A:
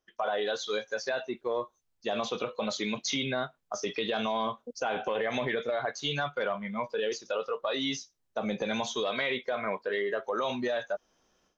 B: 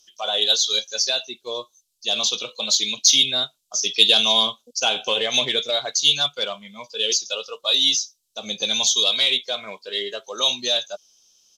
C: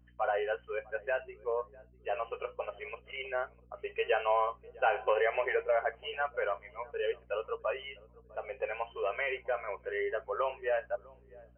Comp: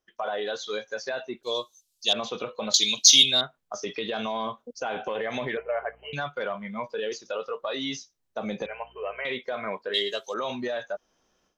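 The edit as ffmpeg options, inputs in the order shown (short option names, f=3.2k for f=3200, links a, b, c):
-filter_complex "[1:a]asplit=3[a][b][c];[2:a]asplit=2[d][e];[0:a]asplit=6[f][g][h][i][j][k];[f]atrim=end=1.432[l];[a]atrim=start=1.428:end=2.132[m];[g]atrim=start=2.128:end=2.742[n];[b]atrim=start=2.738:end=3.412[o];[h]atrim=start=3.408:end=5.572[p];[d]atrim=start=5.568:end=6.132[q];[i]atrim=start=6.128:end=8.662[r];[e]atrim=start=8.658:end=9.252[s];[j]atrim=start=9.248:end=9.942[t];[c]atrim=start=9.938:end=10.342[u];[k]atrim=start=10.338[v];[l][m]acrossfade=d=0.004:c1=hsin:c2=hsin[w];[w][n]acrossfade=d=0.004:c1=hsin:c2=hsin[x];[x][o]acrossfade=d=0.004:c1=hsin:c2=hsin[y];[y][p]acrossfade=d=0.004:c1=hsin:c2=hsin[z];[z][q]acrossfade=d=0.004:c1=hsin:c2=hsin[aa];[aa][r]acrossfade=d=0.004:c1=hsin:c2=hsin[ab];[ab][s]acrossfade=d=0.004:c1=hsin:c2=hsin[ac];[ac][t]acrossfade=d=0.004:c1=hsin:c2=hsin[ad];[ad][u]acrossfade=d=0.004:c1=hsin:c2=hsin[ae];[ae][v]acrossfade=d=0.004:c1=hsin:c2=hsin"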